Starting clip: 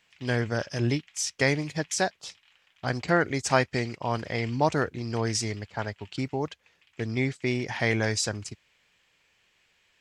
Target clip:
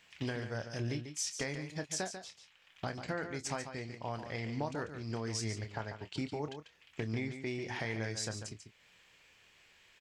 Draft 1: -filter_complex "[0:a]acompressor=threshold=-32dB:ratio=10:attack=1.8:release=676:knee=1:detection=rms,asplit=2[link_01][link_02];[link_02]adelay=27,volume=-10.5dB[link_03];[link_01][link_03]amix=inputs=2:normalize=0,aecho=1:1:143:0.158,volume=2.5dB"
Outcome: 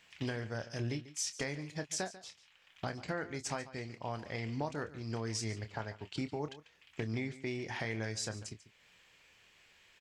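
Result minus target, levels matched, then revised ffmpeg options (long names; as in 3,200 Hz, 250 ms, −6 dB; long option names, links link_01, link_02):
echo-to-direct −7 dB
-filter_complex "[0:a]acompressor=threshold=-32dB:ratio=10:attack=1.8:release=676:knee=1:detection=rms,asplit=2[link_01][link_02];[link_02]adelay=27,volume=-10.5dB[link_03];[link_01][link_03]amix=inputs=2:normalize=0,aecho=1:1:143:0.355,volume=2.5dB"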